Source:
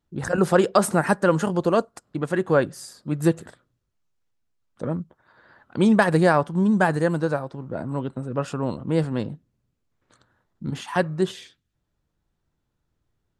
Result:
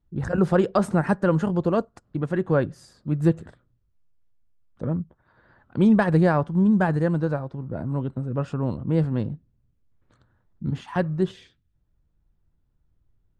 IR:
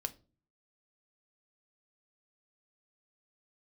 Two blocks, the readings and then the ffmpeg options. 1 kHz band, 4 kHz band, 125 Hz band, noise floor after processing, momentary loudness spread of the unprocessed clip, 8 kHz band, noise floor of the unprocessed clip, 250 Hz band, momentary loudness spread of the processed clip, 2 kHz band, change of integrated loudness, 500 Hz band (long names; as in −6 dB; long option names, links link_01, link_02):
−4.5 dB, can't be measured, +2.5 dB, −69 dBFS, 14 LU, below −10 dB, −77 dBFS, +0.5 dB, 13 LU, −5.5 dB, −1.0 dB, −3.0 dB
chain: -af "aemphasis=mode=reproduction:type=bsi,volume=-4.5dB"